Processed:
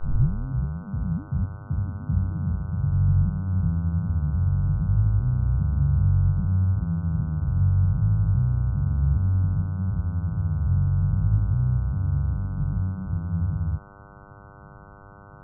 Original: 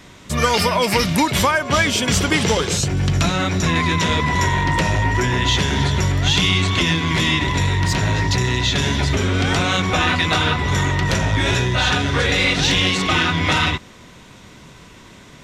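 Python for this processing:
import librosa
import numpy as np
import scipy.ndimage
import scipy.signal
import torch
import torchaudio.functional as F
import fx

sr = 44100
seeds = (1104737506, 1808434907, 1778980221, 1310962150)

y = fx.tape_start_head(x, sr, length_s=0.82)
y = scipy.signal.sosfilt(scipy.signal.cheby2(4, 80, 910.0, 'lowpass', fs=sr, output='sos'), y)
y = fx.dmg_buzz(y, sr, base_hz=100.0, harmonics=15, level_db=-49.0, tilt_db=0, odd_only=False)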